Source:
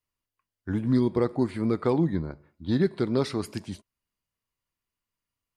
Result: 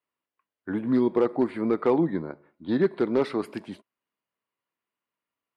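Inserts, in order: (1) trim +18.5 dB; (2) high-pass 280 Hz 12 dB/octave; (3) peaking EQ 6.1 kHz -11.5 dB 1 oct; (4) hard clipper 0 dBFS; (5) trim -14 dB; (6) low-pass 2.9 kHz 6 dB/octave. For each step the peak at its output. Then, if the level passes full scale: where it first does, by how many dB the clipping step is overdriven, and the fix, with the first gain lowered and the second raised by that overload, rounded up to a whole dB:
+7.0 dBFS, +5.0 dBFS, +4.5 dBFS, 0.0 dBFS, -14.0 dBFS, -14.0 dBFS; step 1, 4.5 dB; step 1 +13.5 dB, step 5 -9 dB

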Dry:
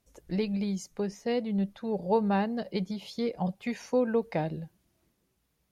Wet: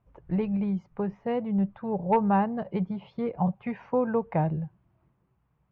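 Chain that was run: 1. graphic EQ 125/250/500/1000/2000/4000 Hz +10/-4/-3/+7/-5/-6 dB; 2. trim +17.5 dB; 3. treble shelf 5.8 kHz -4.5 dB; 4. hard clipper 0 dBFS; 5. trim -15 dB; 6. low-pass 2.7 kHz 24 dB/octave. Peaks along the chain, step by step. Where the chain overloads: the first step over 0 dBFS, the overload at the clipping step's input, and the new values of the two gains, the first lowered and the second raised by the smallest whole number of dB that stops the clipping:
-13.5 dBFS, +4.0 dBFS, +4.0 dBFS, 0.0 dBFS, -15.0 dBFS, -14.5 dBFS; step 2, 4.0 dB; step 2 +13.5 dB, step 5 -11 dB

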